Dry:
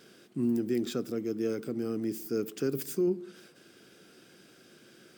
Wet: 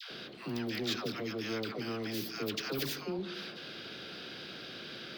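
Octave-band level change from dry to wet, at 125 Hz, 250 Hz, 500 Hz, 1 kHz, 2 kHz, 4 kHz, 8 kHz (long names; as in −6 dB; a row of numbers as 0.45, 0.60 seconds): −2.5, −7.0, −6.5, +7.5, +9.5, +11.0, −1.5 decibels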